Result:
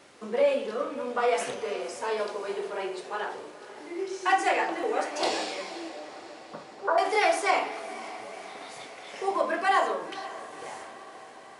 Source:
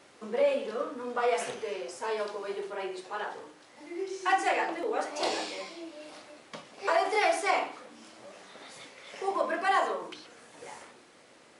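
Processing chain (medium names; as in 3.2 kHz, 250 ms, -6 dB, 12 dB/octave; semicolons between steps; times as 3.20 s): 5.89–6.98 s: Chebyshev low-pass 1.5 kHz, order 5; on a send: echo that smears into a reverb 514 ms, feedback 62%, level -15 dB; on the sum: trim +2.5 dB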